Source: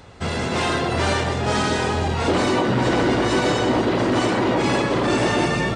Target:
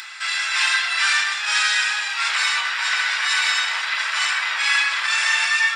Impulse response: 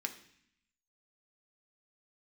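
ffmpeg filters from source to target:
-filter_complex "[0:a]highpass=f=1400:w=0.5412,highpass=f=1400:w=1.3066,acompressor=mode=upward:threshold=0.0158:ratio=2.5[s0];[1:a]atrim=start_sample=2205[s1];[s0][s1]afir=irnorm=-1:irlink=0,volume=2.37"

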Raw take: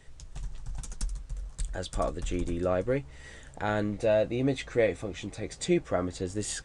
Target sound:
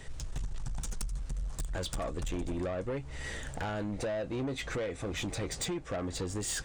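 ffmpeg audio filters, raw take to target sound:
-af "acompressor=threshold=0.0178:ratio=16,asoftclip=type=tanh:threshold=0.0112,volume=2.82"

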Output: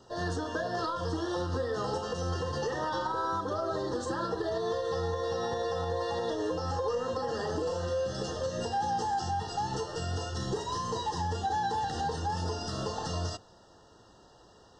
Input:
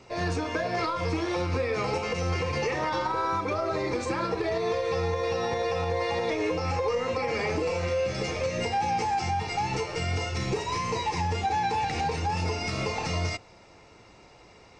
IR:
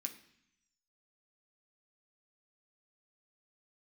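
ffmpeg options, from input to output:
-filter_complex "[0:a]asuperstop=centerf=2300:order=12:qfactor=2.3,asplit=2[s0][s1];[1:a]atrim=start_sample=2205[s2];[s1][s2]afir=irnorm=-1:irlink=0,volume=0.178[s3];[s0][s3]amix=inputs=2:normalize=0,volume=0.631"

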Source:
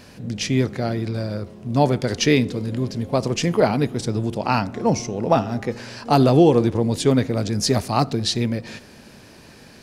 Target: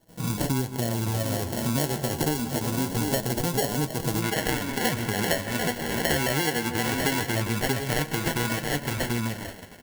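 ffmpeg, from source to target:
-filter_complex "[0:a]dynaudnorm=f=180:g=11:m=3.76,aecho=1:1:737:0.266,acrusher=samples=36:mix=1:aa=0.000001,asplit=2[s0][s1];[s1]adelay=155,lowpass=f=2000:p=1,volume=0.158,asplit=2[s2][s3];[s3]adelay=155,lowpass=f=2000:p=1,volume=0.53,asplit=2[s4][s5];[s5]adelay=155,lowpass=f=2000:p=1,volume=0.53,asplit=2[s6][s7];[s7]adelay=155,lowpass=f=2000:p=1,volume=0.53,asplit=2[s8][s9];[s9]adelay=155,lowpass=f=2000:p=1,volume=0.53[s10];[s0][s2][s4][s6][s8][s10]amix=inputs=6:normalize=0,flanger=delay=6.1:depth=7.2:regen=43:speed=0.24:shape=sinusoidal,agate=range=0.0501:threshold=0.00447:ratio=16:detection=peak,asetnsamples=n=441:p=0,asendcmd='4.22 equalizer g 6.5',equalizer=f=2000:t=o:w=1.4:g=-4,acompressor=threshold=0.0282:ratio=10,highshelf=f=5600:g=11,volume=2.37"

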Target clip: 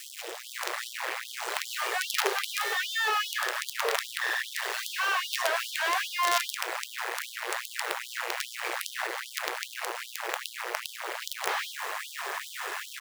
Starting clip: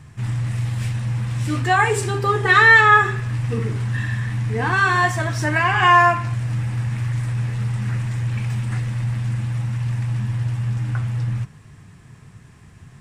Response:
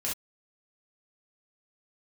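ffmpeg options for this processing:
-filter_complex "[0:a]acrossover=split=280[s0][s1];[s1]acrusher=bits=3:mode=log:mix=0:aa=0.000001[s2];[s0][s2]amix=inputs=2:normalize=0,acrossover=split=270|2900[s3][s4][s5];[s3]adelay=30[s6];[s4]adelay=270[s7];[s6][s7][s5]amix=inputs=3:normalize=0,areverse,acompressor=threshold=0.0316:ratio=8,areverse,asplit=2[s8][s9];[s9]highpass=f=720:p=1,volume=44.7,asoftclip=type=tanh:threshold=0.0841[s10];[s8][s10]amix=inputs=2:normalize=0,lowpass=f=1100:p=1,volume=0.501,acrusher=bits=5:dc=4:mix=0:aa=0.000001,afftfilt=real='re*gte(b*sr/1024,340*pow(3100/340,0.5+0.5*sin(2*PI*2.5*pts/sr)))':imag='im*gte(b*sr/1024,340*pow(3100/340,0.5+0.5*sin(2*PI*2.5*pts/sr)))':win_size=1024:overlap=0.75,volume=2.82"

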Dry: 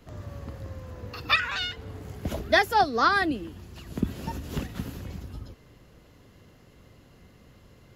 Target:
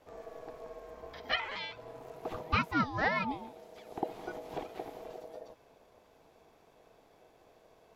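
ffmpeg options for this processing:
-filter_complex "[0:a]aeval=exprs='val(0)*sin(2*PI*560*n/s)':c=same,acrossover=split=4200[s0][s1];[s1]acompressor=threshold=0.00126:ratio=4:attack=1:release=60[s2];[s0][s2]amix=inputs=2:normalize=0,volume=0.531"

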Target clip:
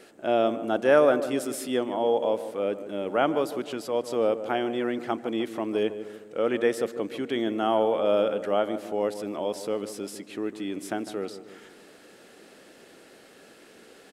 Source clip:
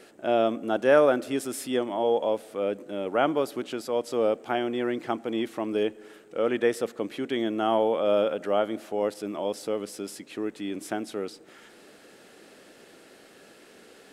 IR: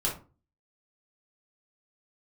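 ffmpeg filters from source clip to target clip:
-filter_complex "[0:a]asplit=2[s0][s1];[s1]adelay=152,lowpass=f=1300:p=1,volume=0.282,asplit=2[s2][s3];[s3]adelay=152,lowpass=f=1300:p=1,volume=0.54,asplit=2[s4][s5];[s5]adelay=152,lowpass=f=1300:p=1,volume=0.54,asplit=2[s6][s7];[s7]adelay=152,lowpass=f=1300:p=1,volume=0.54,asplit=2[s8][s9];[s9]adelay=152,lowpass=f=1300:p=1,volume=0.54,asplit=2[s10][s11];[s11]adelay=152,lowpass=f=1300:p=1,volume=0.54[s12];[s0][s2][s4][s6][s8][s10][s12]amix=inputs=7:normalize=0"

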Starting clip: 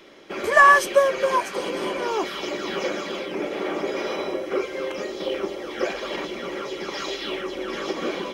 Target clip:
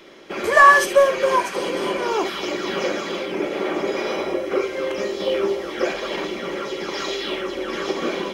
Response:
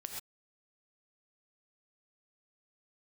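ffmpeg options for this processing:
-filter_complex "[0:a]asplit=2[s0][s1];[s1]asoftclip=type=hard:threshold=0.141,volume=0.282[s2];[s0][s2]amix=inputs=2:normalize=0,asettb=1/sr,asplit=3[s3][s4][s5];[s3]atrim=end=4.974[s6];[s4]atrim=start=4.97:end=5.71,asetpts=PTS-STARTPTS,afade=t=in:d=0.004:c=qsin,afade=t=out:st=0.736:d=0.004:c=qsin,asplit=2[s7][s8];[s8]adelay=15,volume=0.562[s9];[s7][s9]amix=inputs=2:normalize=0,atrim=end_sample=32634[s10];[s5]atrim=start=5.706[s11];[s6][s10]acrossfade=d=0.004:c1=hsin:c2=qsin[s12];[s12][s11]acrossfade=d=0.004:c1=qsin:c2=hsin[s13];[1:a]atrim=start_sample=2205,atrim=end_sample=3528[s14];[s13][s14]afir=irnorm=-1:irlink=0,volume=1.68"

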